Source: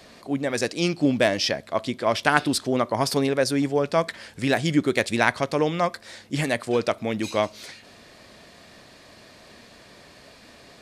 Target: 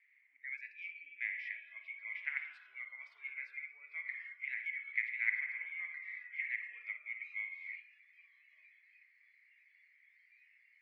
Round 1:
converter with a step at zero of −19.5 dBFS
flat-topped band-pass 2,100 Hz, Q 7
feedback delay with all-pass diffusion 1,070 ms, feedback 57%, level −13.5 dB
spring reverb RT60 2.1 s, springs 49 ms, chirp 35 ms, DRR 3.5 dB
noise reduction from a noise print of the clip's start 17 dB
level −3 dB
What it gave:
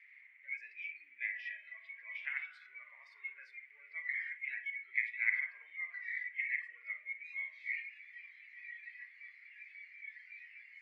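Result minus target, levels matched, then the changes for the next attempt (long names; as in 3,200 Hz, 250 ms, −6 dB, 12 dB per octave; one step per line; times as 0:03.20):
converter with a step at zero: distortion +9 dB
change: converter with a step at zero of −31 dBFS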